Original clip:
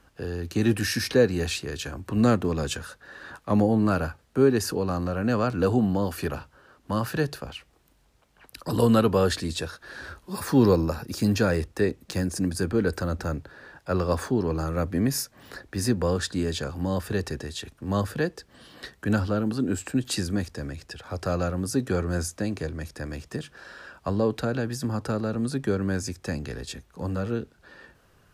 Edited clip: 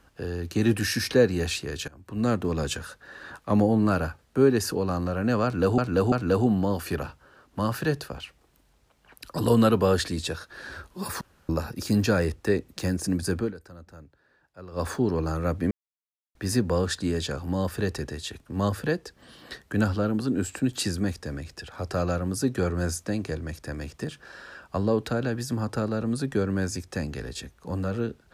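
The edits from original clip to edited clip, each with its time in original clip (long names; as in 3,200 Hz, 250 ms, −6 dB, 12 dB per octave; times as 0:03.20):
0:01.88–0:02.58: fade in, from −19.5 dB
0:05.44–0:05.78: repeat, 3 plays
0:10.53–0:10.81: fill with room tone
0:12.70–0:14.19: duck −18 dB, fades 0.16 s
0:15.03–0:15.67: silence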